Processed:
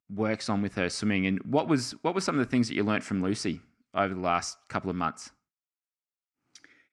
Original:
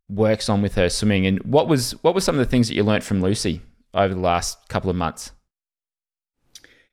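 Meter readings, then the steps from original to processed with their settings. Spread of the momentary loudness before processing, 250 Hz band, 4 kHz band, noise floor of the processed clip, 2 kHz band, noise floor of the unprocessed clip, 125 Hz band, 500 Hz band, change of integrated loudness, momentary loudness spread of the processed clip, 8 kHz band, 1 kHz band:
8 LU, −7.0 dB, −10.0 dB, below −85 dBFS, −5.0 dB, below −85 dBFS, −11.5 dB, −11.5 dB, −8.5 dB, 8 LU, −10.0 dB, −6.0 dB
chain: loudspeaker in its box 130–8,400 Hz, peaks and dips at 290 Hz +5 dB, 500 Hz −8 dB, 1,300 Hz +7 dB, 2,200 Hz +5 dB, 3,600 Hz −7 dB
level −8 dB

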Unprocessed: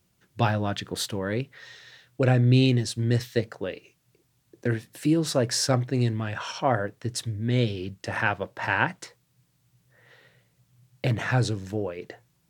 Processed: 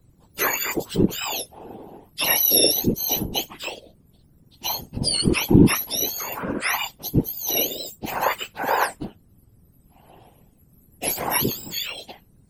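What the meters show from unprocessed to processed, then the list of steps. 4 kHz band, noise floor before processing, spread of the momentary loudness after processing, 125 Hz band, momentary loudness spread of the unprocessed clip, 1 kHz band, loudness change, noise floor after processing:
+8.5 dB, −69 dBFS, 18 LU, −3.5 dB, 12 LU, +3.5 dB, +4.0 dB, −58 dBFS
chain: frequency axis turned over on the octave scale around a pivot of 1,200 Hz
random phases in short frames
level +5.5 dB

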